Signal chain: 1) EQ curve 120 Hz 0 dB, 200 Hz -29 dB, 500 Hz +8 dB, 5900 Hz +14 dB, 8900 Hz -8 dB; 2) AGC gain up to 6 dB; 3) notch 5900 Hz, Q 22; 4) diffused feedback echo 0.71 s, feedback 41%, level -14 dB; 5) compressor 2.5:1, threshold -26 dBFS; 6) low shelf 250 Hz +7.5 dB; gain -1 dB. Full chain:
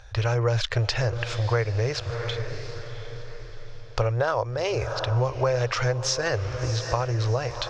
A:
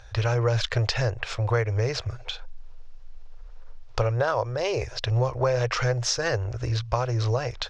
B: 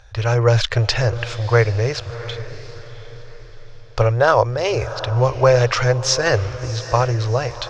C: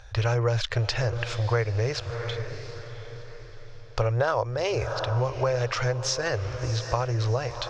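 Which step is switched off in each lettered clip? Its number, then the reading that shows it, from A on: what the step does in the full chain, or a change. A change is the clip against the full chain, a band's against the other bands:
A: 4, momentary loudness spread change -9 LU; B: 5, mean gain reduction 4.5 dB; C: 2, loudness change -1.0 LU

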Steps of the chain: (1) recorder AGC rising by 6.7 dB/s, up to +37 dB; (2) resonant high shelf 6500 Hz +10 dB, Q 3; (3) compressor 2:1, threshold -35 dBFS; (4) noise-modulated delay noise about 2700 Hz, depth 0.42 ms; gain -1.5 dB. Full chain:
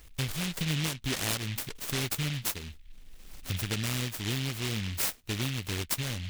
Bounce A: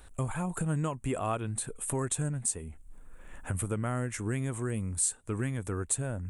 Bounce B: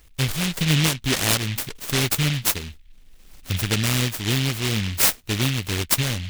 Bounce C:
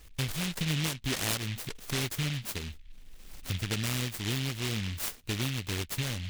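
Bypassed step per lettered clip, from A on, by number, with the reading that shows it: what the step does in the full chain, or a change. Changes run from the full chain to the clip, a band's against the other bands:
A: 4, 4 kHz band -19.0 dB; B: 3, mean gain reduction 8.0 dB; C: 2, momentary loudness spread change +2 LU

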